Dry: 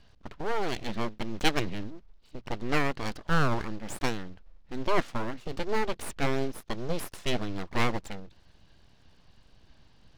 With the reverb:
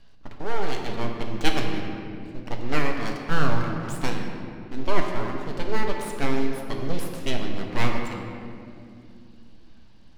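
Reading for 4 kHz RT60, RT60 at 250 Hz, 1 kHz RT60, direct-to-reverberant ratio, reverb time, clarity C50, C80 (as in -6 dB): 1.5 s, 3.9 s, 2.1 s, 1.5 dB, 2.5 s, 3.5 dB, 4.5 dB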